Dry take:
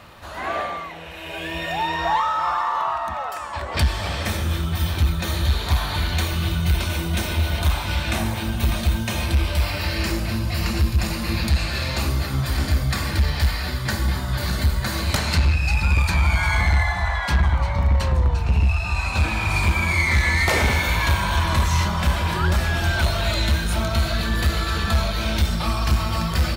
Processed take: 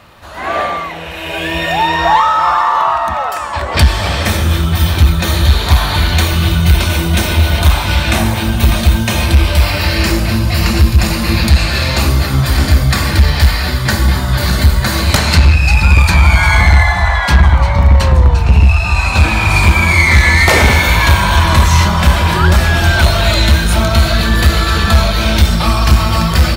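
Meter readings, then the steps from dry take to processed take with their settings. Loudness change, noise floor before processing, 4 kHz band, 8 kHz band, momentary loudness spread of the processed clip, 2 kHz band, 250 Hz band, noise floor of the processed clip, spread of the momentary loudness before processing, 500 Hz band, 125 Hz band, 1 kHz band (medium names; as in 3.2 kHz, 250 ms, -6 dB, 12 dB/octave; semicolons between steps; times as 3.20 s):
+10.5 dB, -30 dBFS, +10.5 dB, +10.5 dB, 5 LU, +10.5 dB, +10.5 dB, -19 dBFS, 5 LU, +10.5 dB, +10.5 dB, +10.5 dB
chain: level rider gain up to 9 dB; trim +2.5 dB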